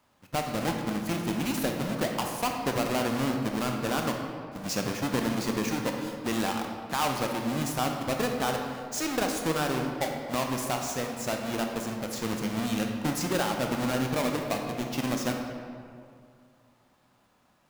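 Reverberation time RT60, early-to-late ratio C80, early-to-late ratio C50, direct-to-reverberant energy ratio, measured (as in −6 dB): 2.3 s, 5.0 dB, 3.5 dB, 2.0 dB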